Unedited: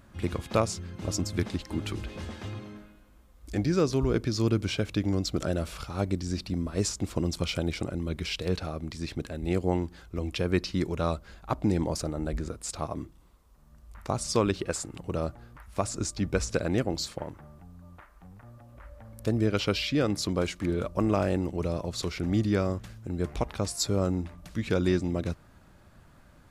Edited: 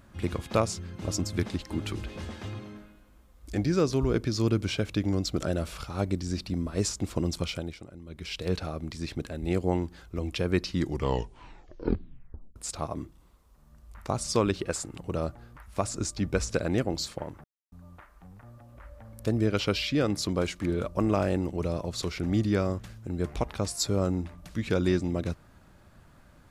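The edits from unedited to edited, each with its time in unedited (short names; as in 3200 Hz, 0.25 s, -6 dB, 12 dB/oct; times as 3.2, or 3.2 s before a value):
7.36–8.51 dip -13.5 dB, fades 0.44 s
10.71 tape stop 1.85 s
17.44–17.72 mute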